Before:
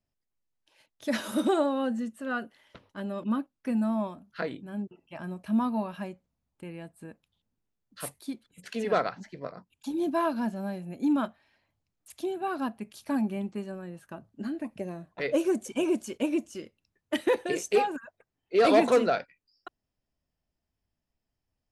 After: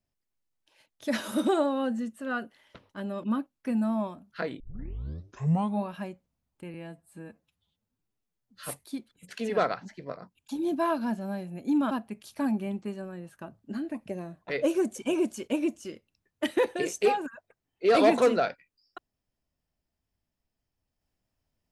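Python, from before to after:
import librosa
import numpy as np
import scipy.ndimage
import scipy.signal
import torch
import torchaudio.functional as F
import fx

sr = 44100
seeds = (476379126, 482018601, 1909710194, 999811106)

y = fx.edit(x, sr, fx.tape_start(start_s=4.6, length_s=1.25),
    fx.stretch_span(start_s=6.74, length_s=1.3, factor=1.5),
    fx.cut(start_s=11.26, length_s=1.35), tone=tone)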